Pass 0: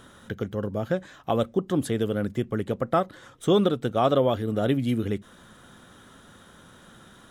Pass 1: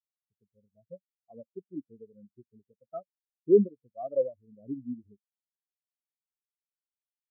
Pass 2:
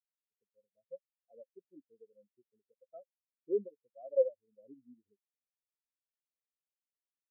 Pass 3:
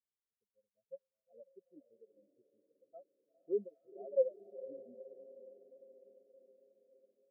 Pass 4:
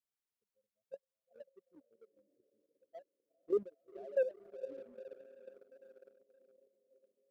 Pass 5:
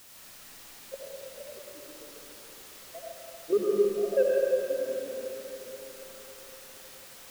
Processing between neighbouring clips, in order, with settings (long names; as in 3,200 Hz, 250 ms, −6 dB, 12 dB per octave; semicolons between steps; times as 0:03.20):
every bin expanded away from the loudest bin 4 to 1
formant filter e
feedback delay with all-pass diffusion 472 ms, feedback 63%, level −15 dB; low-pass that shuts in the quiet parts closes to 530 Hz, open at −33 dBFS; level −2.5 dB
leveller curve on the samples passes 1; output level in coarse steps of 10 dB; level +2.5 dB
in parallel at −8 dB: bit-depth reduction 8 bits, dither triangular; on the sum: comb and all-pass reverb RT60 3 s, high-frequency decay 0.75×, pre-delay 45 ms, DRR −4.5 dB; level +3.5 dB